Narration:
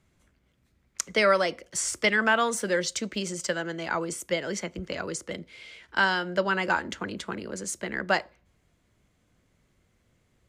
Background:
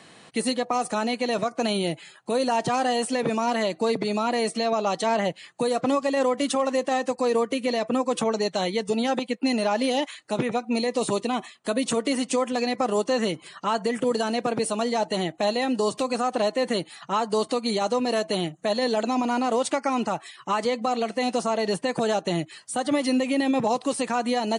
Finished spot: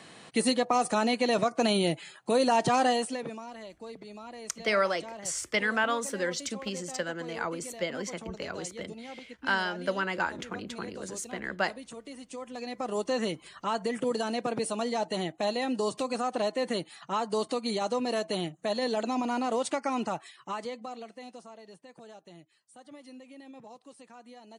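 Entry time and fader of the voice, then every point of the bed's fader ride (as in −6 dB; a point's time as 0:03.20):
3.50 s, −4.5 dB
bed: 0:02.88 −0.5 dB
0:03.49 −19.5 dB
0:12.21 −19.5 dB
0:13.09 −5.5 dB
0:20.17 −5.5 dB
0:21.65 −25.5 dB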